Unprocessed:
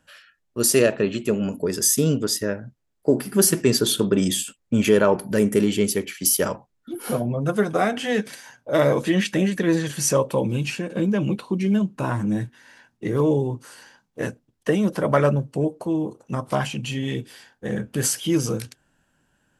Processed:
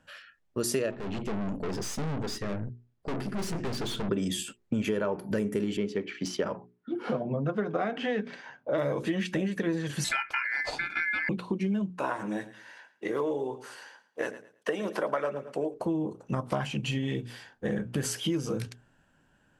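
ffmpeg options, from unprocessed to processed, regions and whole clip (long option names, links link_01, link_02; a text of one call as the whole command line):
ffmpeg -i in.wav -filter_complex "[0:a]asettb=1/sr,asplit=3[link_01][link_02][link_03];[link_01]atrim=end=0.914[link_04];[link_02]atrim=start=0.91:end=4.09,asetpts=PTS-STARTPTS,afade=type=in:duration=0.004:curve=qsin,afade=type=out:start_time=3.176:duration=0.004:curve=qsin,lowpass=6700,equalizer=frequency=100:width=0.46:gain=8.5,aeval=exprs='(tanh(35.5*val(0)+0.6)-tanh(0.6))/35.5':channel_layout=same[link_05];[link_03]atrim=start=4.086[link_06];[link_04][link_05]acrossfade=duration=0.004:curve1=hsin:curve2=qsin[link_07];[link_07][link_06]acrossfade=duration=0.004:curve1=qsin:curve2=hsin,asettb=1/sr,asplit=3[link_08][link_09][link_10];[link_08]atrim=end=5.774[link_11];[link_09]atrim=start=5.77:end=8.78,asetpts=PTS-STARTPTS,afade=type=in:duration=0.004:curve=qsin,afade=type=out:start_time=3.006:duration=0.004:curve=qsin,highpass=130,lowpass=6700,adynamicsmooth=sensitivity=1:basefreq=3800[link_12];[link_10]atrim=start=8.776[link_13];[link_11][link_12]acrossfade=duration=0.004:curve1=hsin:curve2=qsin[link_14];[link_14][link_13]acrossfade=duration=0.004:curve1=qsin:curve2=hsin,asettb=1/sr,asplit=3[link_15][link_16][link_17];[link_15]atrim=end=10.044[link_18];[link_16]atrim=start=10.04:end=11.29,asetpts=PTS-STARTPTS,afade=type=in:duration=0.004:curve=qsin,afade=type=out:start_time=1.246:duration=0.004:curve=qsin,lowpass=7900,aeval=exprs='val(0)*sin(2*PI*1900*n/s)':channel_layout=same[link_19];[link_17]atrim=start=11.286[link_20];[link_18][link_19]acrossfade=duration=0.004:curve1=hsin:curve2=qsin[link_21];[link_21][link_20]acrossfade=duration=0.004:curve1=qsin:curve2=hsin,asettb=1/sr,asplit=3[link_22][link_23][link_24];[link_22]atrim=end=11.904[link_25];[link_23]atrim=start=11.9:end=15.74,asetpts=PTS-STARTPTS,afade=type=in:duration=0.004:curve=qsin,afade=type=out:start_time=3.836:duration=0.004:curve=qsin,highpass=440,aecho=1:1:110|220|330:0.15|0.0389|0.0101,atrim=end_sample=169344[link_26];[link_24]atrim=start=15.736[link_27];[link_25][link_26]acrossfade=duration=0.004:curve1=hsin:curve2=qsin[link_28];[link_28][link_27]acrossfade=duration=0.004:curve1=qsin:curve2=hsin,lowpass=frequency=3400:poles=1,bandreject=frequency=60:width_type=h:width=6,bandreject=frequency=120:width_type=h:width=6,bandreject=frequency=180:width_type=h:width=6,bandreject=frequency=240:width_type=h:width=6,bandreject=frequency=300:width_type=h:width=6,bandreject=frequency=360:width_type=h:width=6,bandreject=frequency=420:width_type=h:width=6,acompressor=threshold=-28dB:ratio=6,volume=1.5dB" out.wav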